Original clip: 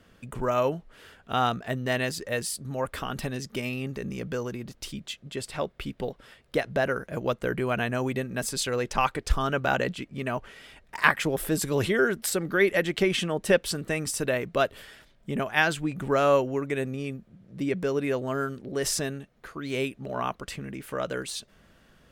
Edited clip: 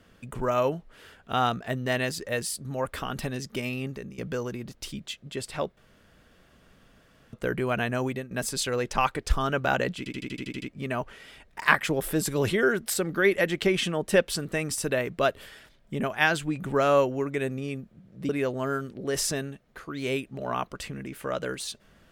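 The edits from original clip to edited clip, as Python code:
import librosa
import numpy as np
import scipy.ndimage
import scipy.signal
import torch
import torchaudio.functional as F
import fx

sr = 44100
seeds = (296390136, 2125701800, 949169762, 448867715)

y = fx.edit(x, sr, fx.fade_out_to(start_s=3.85, length_s=0.33, floor_db=-13.5),
    fx.room_tone_fill(start_s=5.77, length_s=1.56),
    fx.fade_out_to(start_s=8.05, length_s=0.26, floor_db=-11.5),
    fx.stutter(start_s=9.98, slice_s=0.08, count=9),
    fx.cut(start_s=17.65, length_s=0.32), tone=tone)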